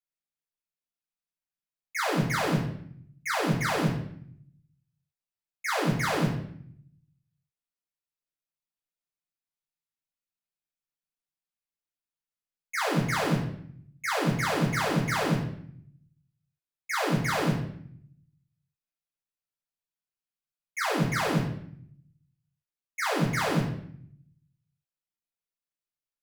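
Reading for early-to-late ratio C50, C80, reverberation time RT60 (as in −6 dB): 4.5 dB, 8.5 dB, 0.65 s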